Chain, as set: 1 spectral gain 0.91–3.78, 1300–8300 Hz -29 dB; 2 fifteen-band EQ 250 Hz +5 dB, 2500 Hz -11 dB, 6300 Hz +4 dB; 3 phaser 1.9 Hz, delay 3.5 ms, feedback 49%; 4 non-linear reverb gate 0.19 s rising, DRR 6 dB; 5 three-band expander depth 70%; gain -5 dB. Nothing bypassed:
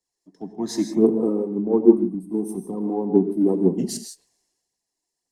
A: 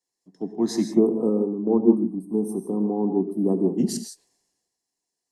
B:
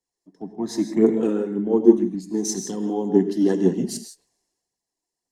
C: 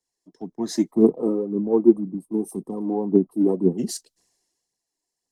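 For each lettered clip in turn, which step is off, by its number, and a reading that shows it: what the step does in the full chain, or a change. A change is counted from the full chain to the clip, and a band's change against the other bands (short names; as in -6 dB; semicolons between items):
3, momentary loudness spread change -7 LU; 1, 8 kHz band +5.0 dB; 4, momentary loudness spread change -2 LU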